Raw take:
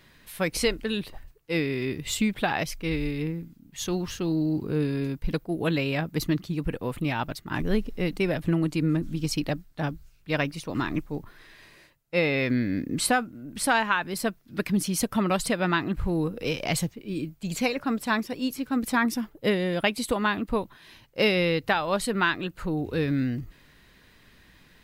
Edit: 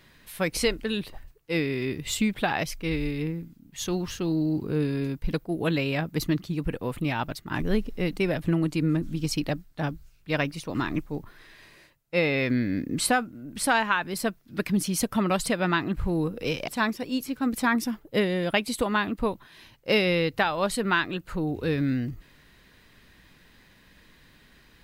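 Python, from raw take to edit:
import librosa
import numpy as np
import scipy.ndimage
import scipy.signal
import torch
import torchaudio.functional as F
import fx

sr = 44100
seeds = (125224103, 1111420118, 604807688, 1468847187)

y = fx.edit(x, sr, fx.cut(start_s=16.68, length_s=1.3), tone=tone)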